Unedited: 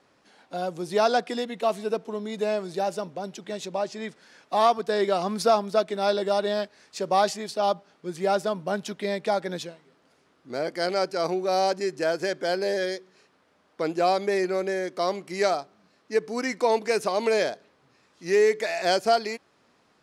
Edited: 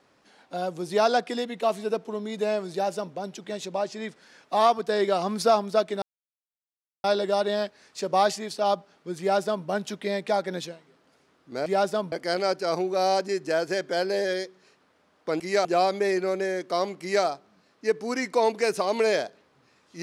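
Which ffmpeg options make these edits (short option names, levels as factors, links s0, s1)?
-filter_complex "[0:a]asplit=6[s0][s1][s2][s3][s4][s5];[s0]atrim=end=6.02,asetpts=PTS-STARTPTS,afade=t=out:st=6.016:d=0.004:c=hsin,apad=pad_dur=1.02[s6];[s1]atrim=start=6.02:end=10.642,asetpts=PTS-STARTPTS,afade=t=in:d=0.004:c=hsin[s7];[s2]atrim=start=8.178:end=8.642[s8];[s3]atrim=start=10.638:end=13.922[s9];[s4]atrim=start=15.268:end=15.522[s10];[s5]atrim=start=13.918[s11];[s6][s7]concat=n=2:v=0:a=1[s12];[s12][s8]acrossfade=d=0.004:c1=hsin:c2=hsin[s13];[s13][s9]acrossfade=d=0.004:c1=hsin:c2=hsin[s14];[s14][s10]acrossfade=d=0.004:c1=hsin:c2=hsin[s15];[s15][s11]acrossfade=d=0.004:c1=hsin:c2=hsin"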